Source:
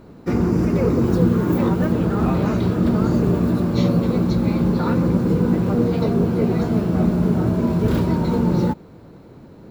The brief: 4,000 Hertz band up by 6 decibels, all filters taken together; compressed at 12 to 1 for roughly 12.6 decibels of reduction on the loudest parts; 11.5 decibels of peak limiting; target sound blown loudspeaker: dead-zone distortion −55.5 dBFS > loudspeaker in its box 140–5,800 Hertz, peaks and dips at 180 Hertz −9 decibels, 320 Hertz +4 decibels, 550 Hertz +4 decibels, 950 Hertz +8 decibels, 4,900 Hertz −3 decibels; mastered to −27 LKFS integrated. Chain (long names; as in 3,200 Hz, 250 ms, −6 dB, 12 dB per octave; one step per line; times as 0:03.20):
parametric band 4,000 Hz +8 dB
downward compressor 12 to 1, threshold −26 dBFS
brickwall limiter −28.5 dBFS
dead-zone distortion −55.5 dBFS
loudspeaker in its box 140–5,800 Hz, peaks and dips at 180 Hz −9 dB, 320 Hz +4 dB, 550 Hz +4 dB, 950 Hz +8 dB, 4,900 Hz −3 dB
level +11.5 dB